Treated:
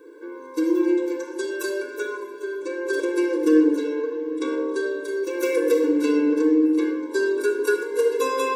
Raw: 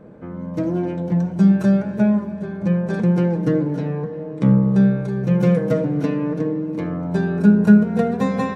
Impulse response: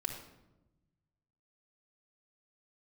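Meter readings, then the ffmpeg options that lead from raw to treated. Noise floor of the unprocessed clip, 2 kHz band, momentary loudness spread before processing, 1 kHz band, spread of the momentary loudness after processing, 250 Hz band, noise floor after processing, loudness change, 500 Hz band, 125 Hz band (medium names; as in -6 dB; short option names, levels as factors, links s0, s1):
-32 dBFS, +4.0 dB, 11 LU, -1.0 dB, 11 LU, -5.5 dB, -39 dBFS, -4.0 dB, +2.5 dB, under -40 dB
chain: -filter_complex "[0:a]crystalizer=i=5.5:c=0[s0];[1:a]atrim=start_sample=2205[s1];[s0][s1]afir=irnorm=-1:irlink=0,afftfilt=real='re*eq(mod(floor(b*sr/1024/290),2),1)':imag='im*eq(mod(floor(b*sr/1024/290),2),1)':win_size=1024:overlap=0.75"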